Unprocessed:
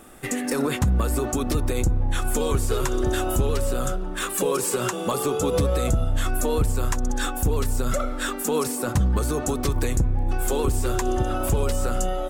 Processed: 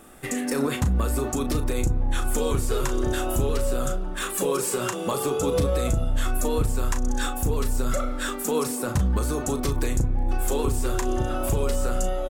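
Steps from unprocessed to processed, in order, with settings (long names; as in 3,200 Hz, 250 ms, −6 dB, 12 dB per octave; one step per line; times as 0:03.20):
double-tracking delay 36 ms −9 dB
level −2 dB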